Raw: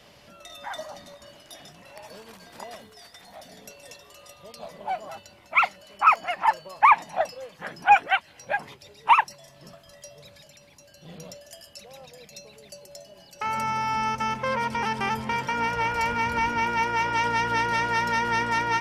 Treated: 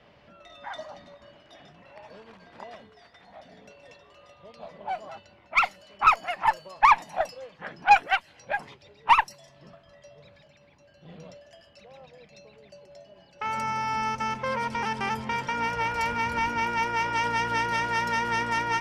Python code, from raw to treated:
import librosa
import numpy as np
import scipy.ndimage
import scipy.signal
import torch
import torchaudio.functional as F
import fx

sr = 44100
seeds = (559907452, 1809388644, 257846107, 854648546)

y = fx.env_lowpass(x, sr, base_hz=2400.0, full_db=-21.0)
y = fx.cheby_harmonics(y, sr, harmonics=(3, 4), levels_db=(-22, -24), full_scale_db=-5.0)